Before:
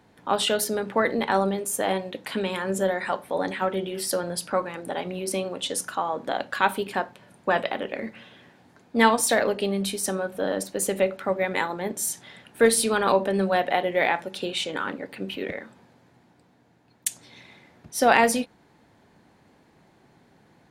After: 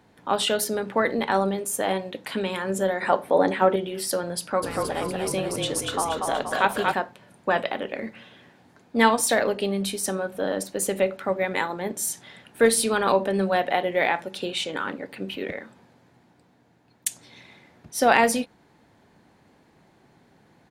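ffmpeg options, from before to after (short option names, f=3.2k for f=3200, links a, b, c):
-filter_complex "[0:a]asettb=1/sr,asplit=3[a][b][c];[a]atrim=end=3.024[d];[b]atrim=start=3.02:end=3.76,asetpts=PTS-STARTPTS,afade=t=in:d=0.004:c=qsin,afade=t=out:st=0.736:d=0.004:c=qsin,equalizer=f=460:t=o:w=3:g=8[e];[c]atrim=start=3.756[f];[d][e]acrossfade=d=0.004:c1=hsin:c2=qsin[g];[g][f]acrossfade=d=0.004:c1=qsin:c2=hsin,asplit=3[h][i][j];[h]afade=t=out:st=4.62:d=0.02[k];[i]asplit=9[l][m][n][o][p][q][r][s][t];[m]adelay=238,afreqshift=-34,volume=-3dB[u];[n]adelay=476,afreqshift=-68,volume=-8dB[v];[o]adelay=714,afreqshift=-102,volume=-13.1dB[w];[p]adelay=952,afreqshift=-136,volume=-18.1dB[x];[q]adelay=1190,afreqshift=-170,volume=-23.1dB[y];[r]adelay=1428,afreqshift=-204,volume=-28.2dB[z];[s]adelay=1666,afreqshift=-238,volume=-33.2dB[aa];[t]adelay=1904,afreqshift=-272,volume=-38.3dB[ab];[l][u][v][w][x][y][z][aa][ab]amix=inputs=9:normalize=0,afade=t=in:st=4.62:d=0.02,afade=t=out:st=6.93:d=0.02[ac];[j]afade=t=in:st=6.93:d=0.02[ad];[k][ac][ad]amix=inputs=3:normalize=0"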